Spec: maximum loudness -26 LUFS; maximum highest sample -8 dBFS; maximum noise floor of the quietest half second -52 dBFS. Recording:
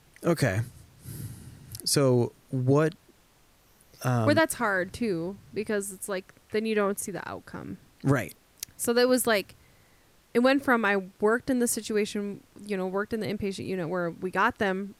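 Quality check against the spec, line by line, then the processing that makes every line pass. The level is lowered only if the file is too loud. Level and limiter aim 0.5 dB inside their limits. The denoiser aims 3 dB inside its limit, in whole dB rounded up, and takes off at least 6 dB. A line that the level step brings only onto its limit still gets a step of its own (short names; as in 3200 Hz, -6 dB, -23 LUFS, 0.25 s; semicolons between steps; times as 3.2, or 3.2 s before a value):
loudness -27.5 LUFS: OK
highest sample -8.5 dBFS: OK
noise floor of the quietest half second -61 dBFS: OK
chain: none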